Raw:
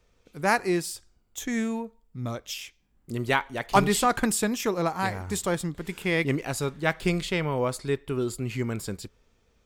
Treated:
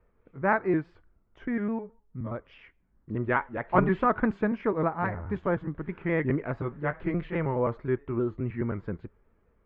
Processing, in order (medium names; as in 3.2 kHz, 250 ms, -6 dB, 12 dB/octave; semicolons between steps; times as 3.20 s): pitch shift switched off and on -1.5 st, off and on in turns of 105 ms; low-pass 1.8 kHz 24 dB/octave; band-stop 760 Hz, Q 12